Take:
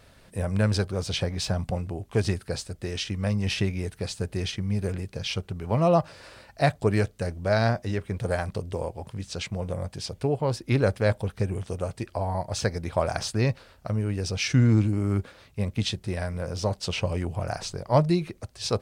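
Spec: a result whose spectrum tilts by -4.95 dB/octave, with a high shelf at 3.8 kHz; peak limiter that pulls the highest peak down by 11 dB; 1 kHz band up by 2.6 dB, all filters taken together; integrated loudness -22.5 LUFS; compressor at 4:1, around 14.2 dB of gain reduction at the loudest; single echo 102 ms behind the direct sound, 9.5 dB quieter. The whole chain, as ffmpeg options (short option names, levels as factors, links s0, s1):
-af "equalizer=f=1000:t=o:g=3.5,highshelf=f=3800:g=3.5,acompressor=threshold=0.0224:ratio=4,alimiter=level_in=1.78:limit=0.0631:level=0:latency=1,volume=0.562,aecho=1:1:102:0.335,volume=6.31"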